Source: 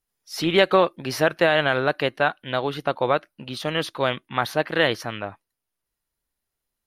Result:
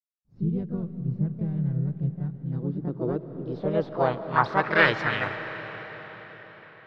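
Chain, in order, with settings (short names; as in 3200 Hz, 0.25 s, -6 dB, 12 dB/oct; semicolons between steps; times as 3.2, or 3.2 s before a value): fifteen-band EQ 250 Hz -6 dB, 630 Hz -12 dB, 4000 Hz +11 dB; companded quantiser 4-bit; harmoniser +4 st -1 dB; low-pass sweep 150 Hz -> 3400 Hz, 2.17–5.83; on a send: reverb RT60 5.2 s, pre-delay 0.105 s, DRR 10 dB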